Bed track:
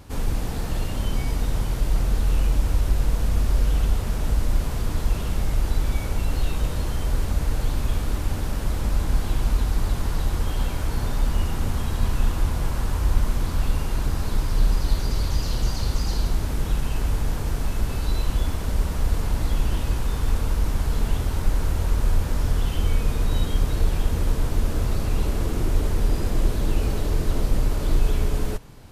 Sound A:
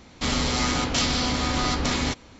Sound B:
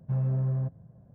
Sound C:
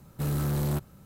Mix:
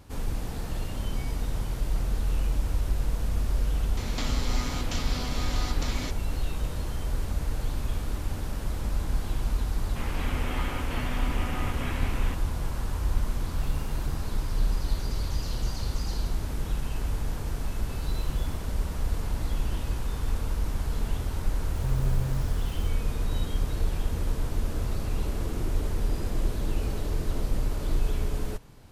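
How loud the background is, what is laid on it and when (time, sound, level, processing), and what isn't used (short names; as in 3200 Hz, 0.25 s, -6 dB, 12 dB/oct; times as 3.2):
bed track -6 dB
3.97 add A -11 dB + three-band squash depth 100%
9.96 add A -10.5 dB + delta modulation 16 kbps, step -21.5 dBFS
13.38 add C -15.5 dB
17.8 add C -17 dB
21.74 add B -4 dB + switching spikes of -32 dBFS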